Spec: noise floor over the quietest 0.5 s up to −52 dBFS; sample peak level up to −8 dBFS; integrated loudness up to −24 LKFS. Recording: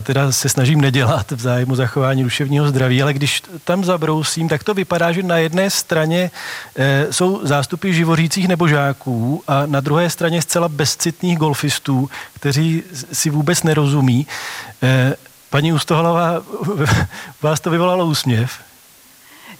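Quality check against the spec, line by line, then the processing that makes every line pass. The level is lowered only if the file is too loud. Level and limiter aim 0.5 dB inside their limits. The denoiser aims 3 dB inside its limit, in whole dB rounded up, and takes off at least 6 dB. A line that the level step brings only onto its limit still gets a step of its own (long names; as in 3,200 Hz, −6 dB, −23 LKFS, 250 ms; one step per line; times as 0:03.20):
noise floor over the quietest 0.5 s −46 dBFS: out of spec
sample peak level −4.0 dBFS: out of spec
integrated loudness −16.5 LKFS: out of spec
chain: level −8 dB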